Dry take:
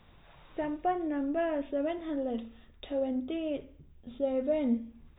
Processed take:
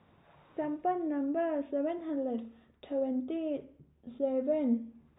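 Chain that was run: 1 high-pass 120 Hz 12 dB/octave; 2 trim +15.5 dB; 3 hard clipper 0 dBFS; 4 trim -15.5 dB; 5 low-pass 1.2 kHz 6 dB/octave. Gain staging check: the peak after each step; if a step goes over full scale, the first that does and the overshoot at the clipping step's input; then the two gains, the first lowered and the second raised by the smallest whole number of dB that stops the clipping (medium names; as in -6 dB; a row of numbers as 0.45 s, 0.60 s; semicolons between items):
-18.5 dBFS, -3.0 dBFS, -3.0 dBFS, -18.5 dBFS, -19.5 dBFS; nothing clips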